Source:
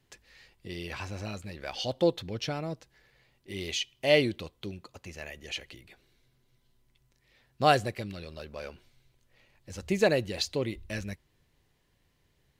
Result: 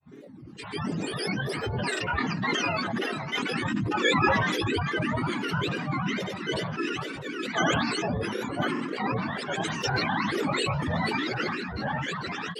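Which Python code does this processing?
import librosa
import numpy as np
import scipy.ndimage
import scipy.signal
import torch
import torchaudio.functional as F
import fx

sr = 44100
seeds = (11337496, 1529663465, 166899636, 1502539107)

p1 = fx.octave_mirror(x, sr, pivot_hz=740.0)
p2 = fx.cabinet(p1, sr, low_hz=180.0, low_slope=24, high_hz=6900.0, hz=(250.0, 550.0, 1800.0, 3200.0, 5900.0), db=(6, -7, 10, -5, -5))
p3 = fx.notch(p2, sr, hz=1700.0, q=12.0)
p4 = p3 + fx.echo_opening(p3, sr, ms=456, hz=750, octaves=1, feedback_pct=70, wet_db=-3, dry=0)
p5 = fx.granulator(p4, sr, seeds[0], grain_ms=100.0, per_s=20.0, spray_ms=17.0, spread_st=0)
p6 = fx.over_compress(p5, sr, threshold_db=-35.0, ratio=-1.0)
p7 = p5 + (p6 * librosa.db_to_amplitude(3.0))
p8 = fx.peak_eq(p7, sr, hz=2600.0, db=6.0, octaves=0.77)
p9 = fx.doubler(p8, sr, ms=29.0, db=-7.0)
p10 = fx.granulator(p9, sr, seeds[1], grain_ms=100.0, per_s=20.0, spray_ms=100.0, spread_st=12)
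p11 = fx.sustainer(p10, sr, db_per_s=27.0)
y = p11 * librosa.db_to_amplitude(-2.0)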